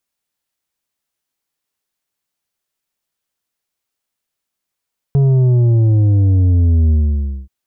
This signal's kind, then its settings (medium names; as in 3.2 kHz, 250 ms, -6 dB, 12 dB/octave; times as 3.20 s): sub drop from 140 Hz, over 2.33 s, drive 7 dB, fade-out 0.57 s, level -9.5 dB